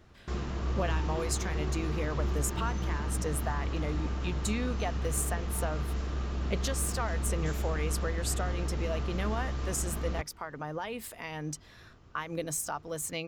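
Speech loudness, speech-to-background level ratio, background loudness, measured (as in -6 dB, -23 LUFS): -36.0 LUFS, -1.5 dB, -34.5 LUFS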